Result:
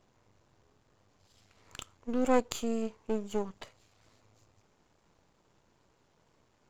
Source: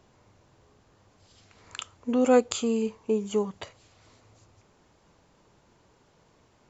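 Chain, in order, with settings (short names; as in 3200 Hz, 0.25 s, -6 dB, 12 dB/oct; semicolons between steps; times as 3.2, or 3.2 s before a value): half-wave gain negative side -12 dB; wow and flutter 21 cents; gain -3.5 dB; MP3 128 kbps 44100 Hz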